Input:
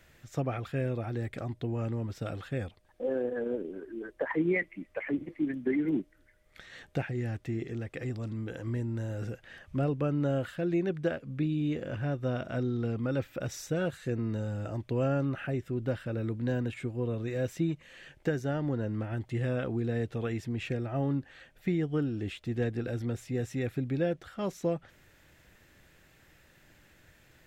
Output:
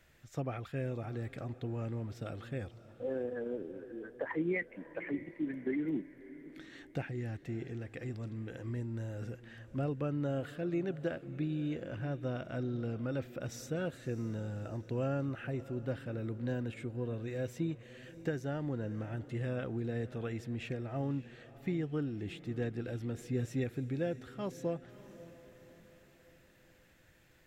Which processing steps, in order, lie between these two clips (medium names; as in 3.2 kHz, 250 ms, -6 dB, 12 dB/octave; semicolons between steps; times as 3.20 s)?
23.18–23.64 s: comb 7.5 ms, depth 75%; echo that smears into a reverb 609 ms, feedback 45%, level -16 dB; trim -5.5 dB